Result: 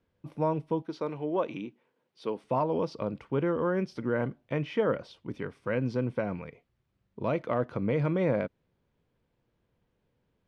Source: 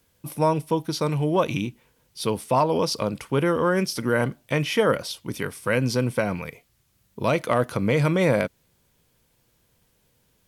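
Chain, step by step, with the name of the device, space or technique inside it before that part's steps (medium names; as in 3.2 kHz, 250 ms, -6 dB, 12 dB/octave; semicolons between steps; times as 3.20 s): 0.82–2.44 s: high-pass 270 Hz 12 dB/octave; phone in a pocket (low-pass 3.7 kHz 12 dB/octave; peaking EQ 330 Hz +3 dB 1.8 oct; treble shelf 2.4 kHz -9 dB); trim -8 dB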